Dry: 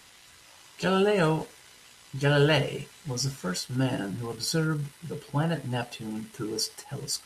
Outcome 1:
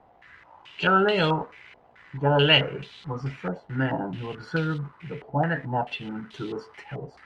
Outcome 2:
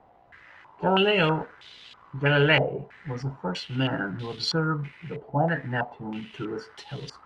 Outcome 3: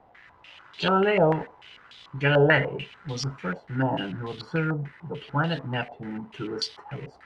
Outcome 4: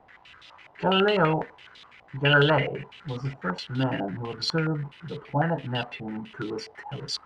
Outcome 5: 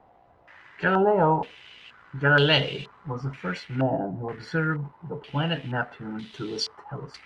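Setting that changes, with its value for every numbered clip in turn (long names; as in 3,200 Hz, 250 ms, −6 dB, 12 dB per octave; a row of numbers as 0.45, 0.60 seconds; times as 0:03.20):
low-pass on a step sequencer, speed: 4.6, 3.1, 6.8, 12, 2.1 Hertz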